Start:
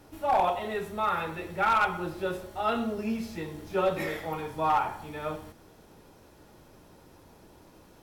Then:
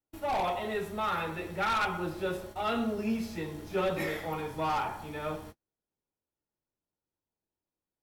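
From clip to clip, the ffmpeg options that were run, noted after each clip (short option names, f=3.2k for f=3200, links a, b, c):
-filter_complex "[0:a]agate=range=-40dB:threshold=-45dB:ratio=16:detection=peak,acrossover=split=360|2000[a][b][c];[b]asoftclip=type=tanh:threshold=-28.5dB[d];[a][d][c]amix=inputs=3:normalize=0"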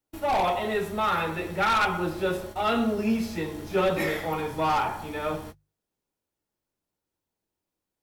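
-af "bandreject=f=50:t=h:w=6,bandreject=f=100:t=h:w=6,bandreject=f=150:t=h:w=6,volume=6dB"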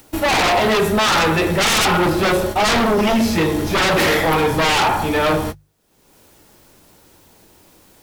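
-af "aeval=exprs='0.2*sin(PI/2*3.98*val(0)/0.2)':c=same,acompressor=mode=upward:threshold=-35dB:ratio=2.5,volume=1.5dB"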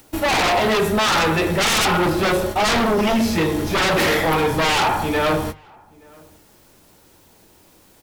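-filter_complex "[0:a]asplit=2[a][b];[b]adelay=874.6,volume=-27dB,highshelf=f=4k:g=-19.7[c];[a][c]amix=inputs=2:normalize=0,volume=-2dB"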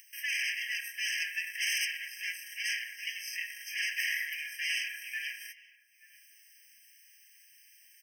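-af "alimiter=limit=-22dB:level=0:latency=1:release=17,afftfilt=real='re*eq(mod(floor(b*sr/1024/1600),2),1)':imag='im*eq(mod(floor(b*sr/1024/1600),2),1)':win_size=1024:overlap=0.75,volume=-1.5dB"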